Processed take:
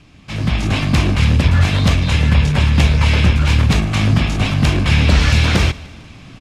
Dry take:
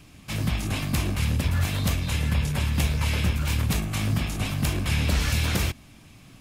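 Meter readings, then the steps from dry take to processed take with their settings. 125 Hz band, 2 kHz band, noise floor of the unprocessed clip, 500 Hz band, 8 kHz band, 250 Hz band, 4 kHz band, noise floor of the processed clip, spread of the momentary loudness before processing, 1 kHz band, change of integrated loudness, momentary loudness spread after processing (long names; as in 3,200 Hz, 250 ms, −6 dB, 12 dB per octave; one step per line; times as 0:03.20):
+11.5 dB, +11.0 dB, −50 dBFS, +11.0 dB, +3.0 dB, +11.0 dB, +10.0 dB, −40 dBFS, 4 LU, +11.0 dB, +11.0 dB, 5 LU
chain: low-pass filter 5,100 Hz 12 dB per octave
repeating echo 150 ms, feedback 52%, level −21 dB
automatic gain control gain up to 8 dB
level +3.5 dB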